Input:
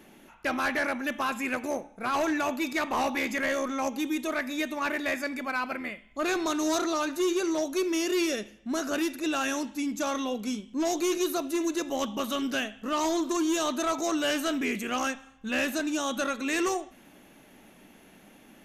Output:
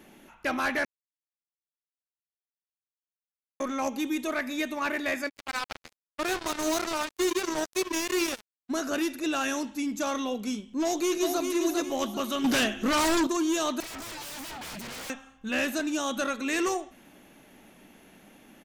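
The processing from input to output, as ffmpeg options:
ffmpeg -i in.wav -filter_complex "[0:a]asplit=3[link_01][link_02][link_03];[link_01]afade=type=out:start_time=5.28:duration=0.02[link_04];[link_02]acrusher=bits=3:mix=0:aa=0.5,afade=type=in:start_time=5.28:duration=0.02,afade=type=out:start_time=8.69:duration=0.02[link_05];[link_03]afade=type=in:start_time=8.69:duration=0.02[link_06];[link_04][link_05][link_06]amix=inputs=3:normalize=0,asplit=2[link_07][link_08];[link_08]afade=type=in:start_time=10.82:duration=0.01,afade=type=out:start_time=11.44:duration=0.01,aecho=0:1:400|800|1200|1600|2000:0.562341|0.224937|0.0899746|0.0359898|0.0143959[link_09];[link_07][link_09]amix=inputs=2:normalize=0,asettb=1/sr,asplit=3[link_10][link_11][link_12];[link_10]atrim=end=12.444[link_13];[link_11]atrim=start=12.44:end=13.27,asetpts=PTS-STARTPTS,afade=type=in:duration=0.004:curve=qsin,afade=type=out:start_time=0.826:duration=0.004:curve=qsin,aeval=exprs='0.0944*sin(PI/2*2.24*val(0)/0.0944)':channel_layout=same[link_14];[link_12]atrim=start=13.266[link_15];[link_13][link_14]acrossfade=duration=0.004:curve1=hsin:curve2=qsin[link_16];[link_16][link_15]acrossfade=duration=0.004:curve1=qsin:curve2=hsin,asettb=1/sr,asplit=3[link_17][link_18][link_19];[link_17]atrim=end=13.804[link_20];[link_18]atrim=start=13.8:end=15.1,asetpts=PTS-STARTPTS,afade=type=in:duration=0.004:curve=qsin,afade=type=out:start_time=1.296:duration=0.004:curve=qsin,aeval=exprs='0.0188*(abs(mod(val(0)/0.0188+3,4)-2)-1)':channel_layout=same[link_21];[link_19]atrim=start=15.096[link_22];[link_20][link_21]acrossfade=duration=0.004:curve1=hsin:curve2=qsin[link_23];[link_23][link_22]acrossfade=duration=0.004:curve1=qsin:curve2=hsin,asplit=3[link_24][link_25][link_26];[link_24]atrim=end=0.85,asetpts=PTS-STARTPTS,afade=type=out:start_time=0.846:duration=0.004:curve=hsin[link_27];[link_25]atrim=start=0.85:end=3.6,asetpts=PTS-STARTPTS,volume=0[link_28];[link_26]atrim=start=3.6,asetpts=PTS-STARTPTS,afade=type=in:duration=0.004:curve=hsin[link_29];[link_27][link_28][link_29]concat=n=3:v=0:a=1" out.wav

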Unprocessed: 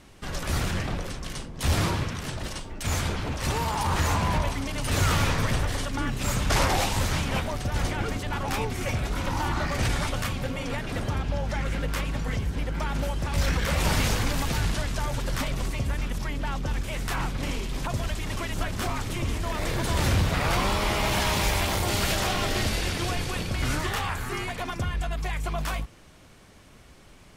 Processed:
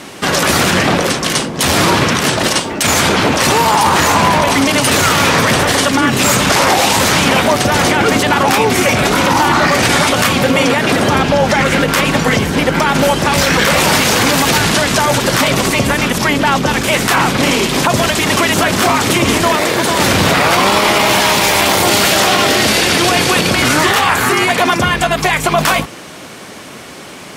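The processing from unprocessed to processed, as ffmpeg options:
ffmpeg -i in.wav -filter_complex "[0:a]asettb=1/sr,asplit=3[link_01][link_02][link_03];[link_01]atrim=end=19.554[link_04];[link_02]atrim=start=19.55:end=20,asetpts=PTS-STARTPTS,afade=type=in:duration=0.004:curve=qsin,afade=type=out:start_time=0.446:duration=0.004:curve=qsin,acrossover=split=200|1500[link_05][link_06][link_07];[link_05]acompressor=threshold=-39dB:ratio=4[link_08];[link_06]acompressor=threshold=-37dB:ratio=4[link_09];[link_07]acompressor=threshold=-41dB:ratio=4[link_10];[link_08][link_09][link_10]amix=inputs=3:normalize=0[link_11];[link_03]atrim=start=19.996[link_12];[link_04][link_11]acrossfade=duration=0.004:curve1=hsin:curve2=qsin[link_13];[link_13][link_12]acrossfade=duration=0.004:curve1=qsin:curve2=hsin,highpass=210,acontrast=29,alimiter=level_in=19.5dB:limit=-1dB:release=50:level=0:latency=1,volume=-1.5dB" out.wav

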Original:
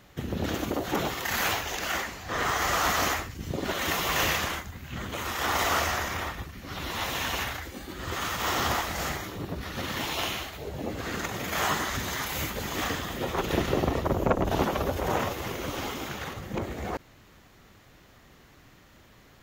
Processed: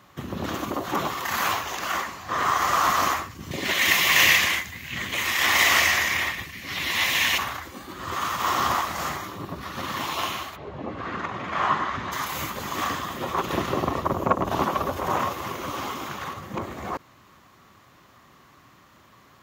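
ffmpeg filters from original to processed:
ffmpeg -i in.wav -filter_complex "[0:a]asettb=1/sr,asplit=3[link_01][link_02][link_03];[link_01]atrim=end=3.514[link_04];[link_02]atrim=start=3.51:end=7.38,asetpts=PTS-STARTPTS,afade=type=in:duration=0.004:curve=qsin,afade=type=out:start_time=3.866:duration=0.004:curve=qsin,highshelf=frequency=1600:width_type=q:width=3:gain=7.5[link_05];[link_03]atrim=start=7.376[link_06];[link_04][link_05]acrossfade=duration=0.004:curve1=hsin:curve2=qsin[link_07];[link_07][link_06]acrossfade=duration=0.004:curve1=qsin:curve2=hsin,asplit=3[link_08][link_09][link_10];[link_08]afade=type=out:start_time=10.55:duration=0.02[link_11];[link_09]lowpass=2800,afade=type=in:start_time=10.55:duration=0.02,afade=type=out:start_time=12.11:duration=0.02[link_12];[link_10]afade=type=in:start_time=12.11:duration=0.02[link_13];[link_11][link_12][link_13]amix=inputs=3:normalize=0,highpass=91,equalizer=frequency=1100:width_type=o:width=0.39:gain=11,bandreject=frequency=460:width=13" out.wav

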